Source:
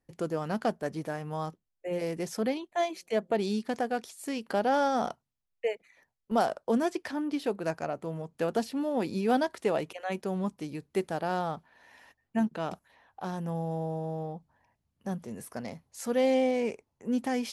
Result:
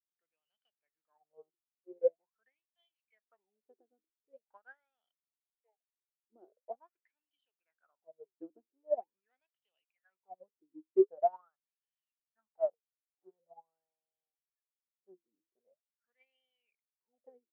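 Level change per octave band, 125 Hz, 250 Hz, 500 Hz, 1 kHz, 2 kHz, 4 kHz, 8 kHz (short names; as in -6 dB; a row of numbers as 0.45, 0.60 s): under -40 dB, -16.5 dB, -8.0 dB, -13.0 dB, under -25 dB, under -40 dB, under -35 dB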